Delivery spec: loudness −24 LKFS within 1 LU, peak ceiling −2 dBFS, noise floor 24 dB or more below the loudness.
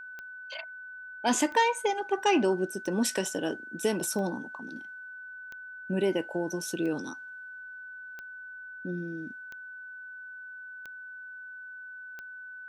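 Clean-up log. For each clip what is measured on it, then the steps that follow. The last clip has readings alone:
number of clicks 10; interfering tone 1,500 Hz; level of the tone −41 dBFS; integrated loudness −30.5 LKFS; sample peak −12.5 dBFS; target loudness −24.0 LKFS
→ click removal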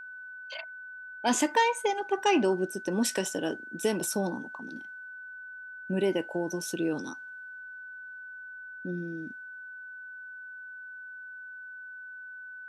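number of clicks 0; interfering tone 1,500 Hz; level of the tone −41 dBFS
→ notch filter 1,500 Hz, Q 30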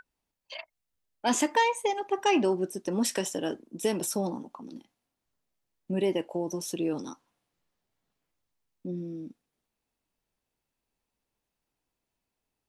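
interfering tone none found; integrated loudness −29.5 LKFS; sample peak −13.0 dBFS; target loudness −24.0 LKFS
→ level +5.5 dB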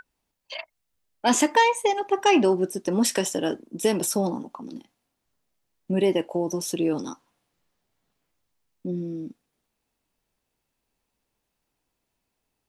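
integrated loudness −24.0 LKFS; sample peak −7.5 dBFS; background noise floor −80 dBFS

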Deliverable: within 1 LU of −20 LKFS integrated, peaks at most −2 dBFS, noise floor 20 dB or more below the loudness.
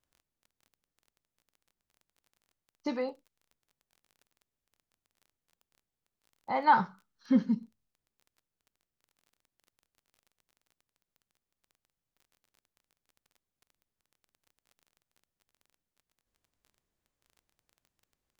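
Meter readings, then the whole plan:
crackle rate 22 per second; integrated loudness −30.0 LKFS; sample peak −12.5 dBFS; target loudness −20.0 LKFS
→ click removal
level +10 dB

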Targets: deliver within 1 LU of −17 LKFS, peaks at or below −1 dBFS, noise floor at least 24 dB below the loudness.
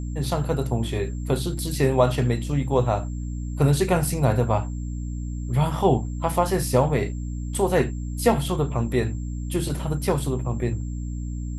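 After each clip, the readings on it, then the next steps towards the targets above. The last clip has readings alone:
mains hum 60 Hz; hum harmonics up to 300 Hz; level of the hum −27 dBFS; interfering tone 7,400 Hz; level of the tone −51 dBFS; integrated loudness −24.5 LKFS; sample peak −5.0 dBFS; target loudness −17.0 LKFS
→ mains-hum notches 60/120/180/240/300 Hz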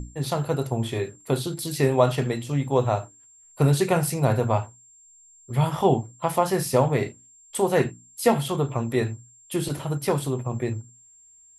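mains hum none found; interfering tone 7,400 Hz; level of the tone −51 dBFS
→ notch filter 7,400 Hz, Q 30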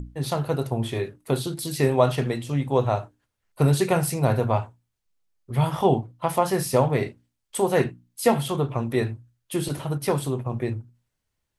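interfering tone none found; integrated loudness −25.0 LKFS; sample peak −5.5 dBFS; target loudness −17.0 LKFS
→ level +8 dB
brickwall limiter −1 dBFS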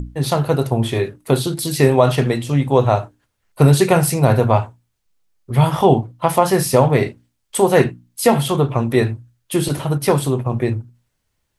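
integrated loudness −17.0 LKFS; sample peak −1.0 dBFS; background noise floor −72 dBFS

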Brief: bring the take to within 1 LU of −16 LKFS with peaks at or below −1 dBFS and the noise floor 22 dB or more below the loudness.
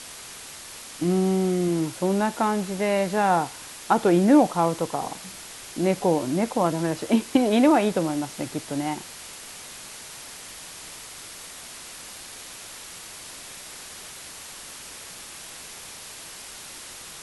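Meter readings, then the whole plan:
background noise floor −41 dBFS; target noise floor −46 dBFS; integrated loudness −23.5 LKFS; sample peak −6.0 dBFS; target loudness −16.0 LKFS
→ broadband denoise 6 dB, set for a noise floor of −41 dBFS
level +7.5 dB
brickwall limiter −1 dBFS

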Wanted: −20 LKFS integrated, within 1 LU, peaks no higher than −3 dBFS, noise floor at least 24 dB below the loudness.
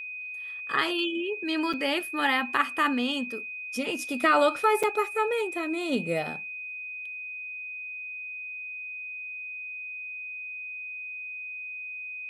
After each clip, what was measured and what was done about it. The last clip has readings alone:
number of dropouts 2; longest dropout 5.8 ms; interfering tone 2,500 Hz; level of the tone −35 dBFS; integrated loudness −29.0 LKFS; sample peak −10.0 dBFS; target loudness −20.0 LKFS
→ repair the gap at 0:01.73/0:04.83, 5.8 ms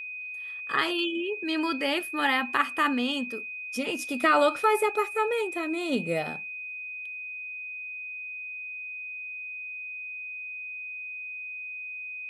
number of dropouts 0; interfering tone 2,500 Hz; level of the tone −35 dBFS
→ notch filter 2,500 Hz, Q 30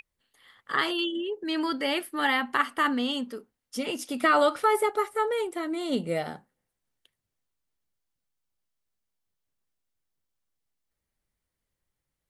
interfering tone none found; integrated loudness −27.0 LKFS; sample peak −11.0 dBFS; target loudness −20.0 LKFS
→ level +7 dB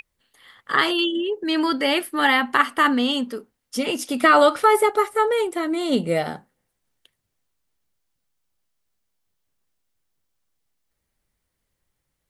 integrated loudness −20.0 LKFS; sample peak −4.0 dBFS; background noise floor −78 dBFS

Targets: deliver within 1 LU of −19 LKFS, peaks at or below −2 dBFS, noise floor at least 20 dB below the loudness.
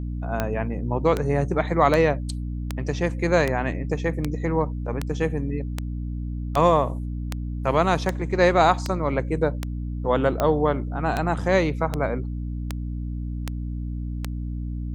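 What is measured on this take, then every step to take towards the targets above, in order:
number of clicks 19; mains hum 60 Hz; hum harmonics up to 300 Hz; level of the hum −27 dBFS; integrated loudness −24.5 LKFS; sample peak −4.5 dBFS; target loudness −19.0 LKFS
→ click removal
mains-hum notches 60/120/180/240/300 Hz
level +5.5 dB
brickwall limiter −2 dBFS

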